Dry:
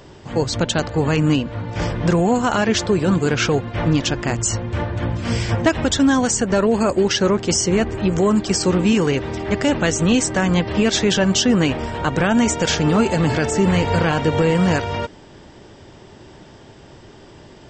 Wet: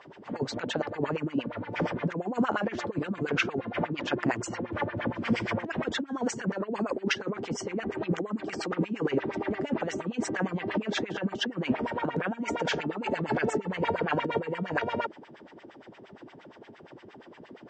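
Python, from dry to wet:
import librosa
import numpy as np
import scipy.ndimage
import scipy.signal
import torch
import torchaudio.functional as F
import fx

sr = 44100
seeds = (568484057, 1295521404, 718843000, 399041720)

y = fx.highpass(x, sr, hz=110.0, slope=6)
y = fx.over_compress(y, sr, threshold_db=-20.0, ratio=-0.5)
y = fx.filter_lfo_bandpass(y, sr, shape='sine', hz=8.6, low_hz=200.0, high_hz=2400.0, q=2.4)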